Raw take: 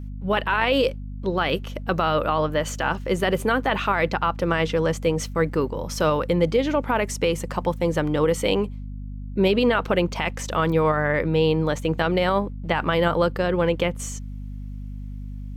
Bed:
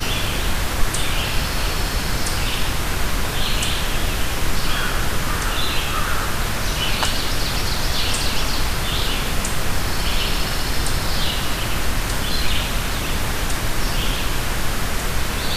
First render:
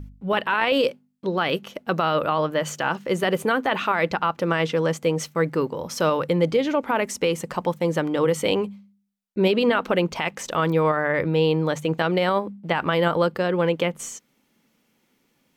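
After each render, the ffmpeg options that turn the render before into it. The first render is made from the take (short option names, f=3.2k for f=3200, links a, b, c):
-af "bandreject=f=50:t=h:w=4,bandreject=f=100:t=h:w=4,bandreject=f=150:t=h:w=4,bandreject=f=200:t=h:w=4,bandreject=f=250:t=h:w=4"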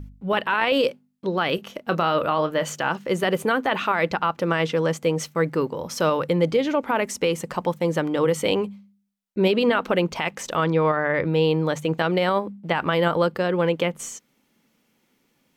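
-filter_complex "[0:a]asettb=1/sr,asplit=3[a][b][c];[a]atrim=end=1.554[d];[b]atrim=start=1.55:end=2.73,asetpts=PTS-STARTPTS,afade=t=in:d=0.004:c=qsin,afade=t=out:st=1.176:d=0.004:c=qsin,asplit=2[e][f];[f]adelay=29,volume=-12dB[g];[e][g]amix=inputs=2:normalize=0,atrim=end_sample=52038[h];[c]atrim=start=2.726[i];[d][h]acrossfade=d=0.004:c1=hsin:c2=qsin[j];[j][i]acrossfade=d=0.004:c1=qsin:c2=hsin,asettb=1/sr,asplit=3[k][l][m];[k]atrim=end=10.644[n];[l]atrim=start=10.64:end=11.27,asetpts=PTS-STARTPTS,afade=t=in:d=0.004:c=qsin,afade=t=out:st=0.626:d=0.004:c=qsin,lowpass=f=6k:w=0.5412,lowpass=f=6k:w=1.3066[o];[m]atrim=start=11.266[p];[n][o]acrossfade=d=0.004:c1=hsin:c2=qsin[q];[q][p]acrossfade=d=0.004:c1=qsin:c2=hsin"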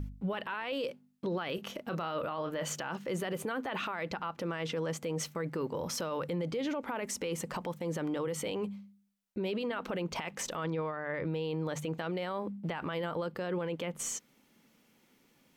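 -af "acompressor=threshold=-28dB:ratio=3,alimiter=level_in=3dB:limit=-24dB:level=0:latency=1:release=25,volume=-3dB"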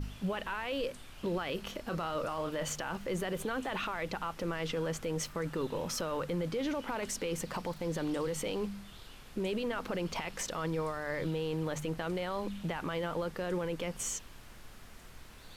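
-filter_complex "[1:a]volume=-30.5dB[a];[0:a][a]amix=inputs=2:normalize=0"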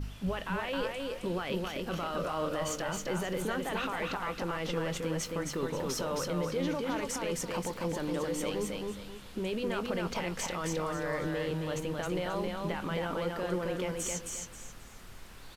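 -filter_complex "[0:a]asplit=2[a][b];[b]adelay=22,volume=-13.5dB[c];[a][c]amix=inputs=2:normalize=0,aecho=1:1:267|534|801|1068:0.708|0.205|0.0595|0.0173"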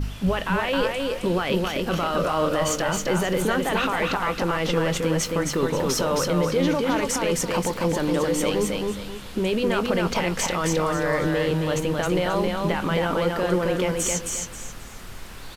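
-af "volume=10.5dB"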